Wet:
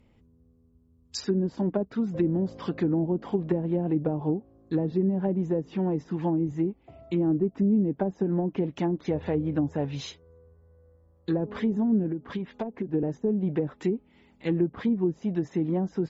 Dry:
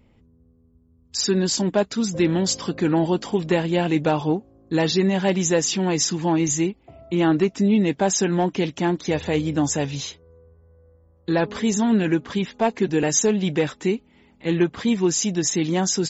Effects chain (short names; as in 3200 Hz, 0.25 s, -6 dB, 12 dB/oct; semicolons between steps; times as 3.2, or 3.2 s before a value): treble ducked by the level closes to 400 Hz, closed at -16 dBFS; 12.06–12.94 compressor 6:1, threshold -24 dBFS, peak gain reduction 8 dB; gain -4 dB